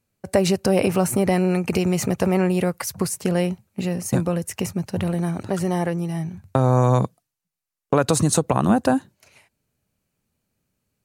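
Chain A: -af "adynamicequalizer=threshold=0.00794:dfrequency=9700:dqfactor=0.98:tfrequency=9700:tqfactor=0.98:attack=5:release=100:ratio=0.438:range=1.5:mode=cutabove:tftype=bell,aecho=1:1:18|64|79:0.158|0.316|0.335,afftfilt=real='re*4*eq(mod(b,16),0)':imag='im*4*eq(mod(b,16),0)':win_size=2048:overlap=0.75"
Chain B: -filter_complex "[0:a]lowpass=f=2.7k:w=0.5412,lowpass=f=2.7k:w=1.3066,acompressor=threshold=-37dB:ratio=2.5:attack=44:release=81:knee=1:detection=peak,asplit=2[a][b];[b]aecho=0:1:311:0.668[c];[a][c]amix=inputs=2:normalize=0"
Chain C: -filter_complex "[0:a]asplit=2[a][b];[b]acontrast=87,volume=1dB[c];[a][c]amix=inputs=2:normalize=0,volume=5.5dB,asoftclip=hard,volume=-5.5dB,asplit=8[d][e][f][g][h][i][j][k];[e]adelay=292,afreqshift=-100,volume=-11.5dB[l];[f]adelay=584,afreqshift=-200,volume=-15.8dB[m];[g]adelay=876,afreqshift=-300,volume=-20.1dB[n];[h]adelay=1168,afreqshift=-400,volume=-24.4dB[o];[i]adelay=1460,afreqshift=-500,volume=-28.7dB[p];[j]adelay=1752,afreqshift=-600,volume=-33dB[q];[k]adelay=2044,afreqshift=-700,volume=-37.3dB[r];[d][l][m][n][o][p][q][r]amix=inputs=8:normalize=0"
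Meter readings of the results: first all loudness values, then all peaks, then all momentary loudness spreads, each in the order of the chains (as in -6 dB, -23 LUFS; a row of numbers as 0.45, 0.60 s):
-26.5, -30.5, -13.0 LUFS; -10.0, -6.5, -1.5 dBFS; 12, 4, 13 LU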